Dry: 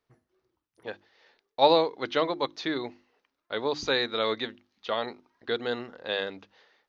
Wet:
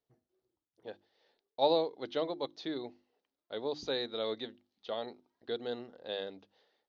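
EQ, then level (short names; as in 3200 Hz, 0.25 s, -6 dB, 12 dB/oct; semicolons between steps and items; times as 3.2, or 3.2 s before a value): air absorption 86 m; low shelf 100 Hz -7 dB; band shelf 1600 Hz -8.5 dB; -6.0 dB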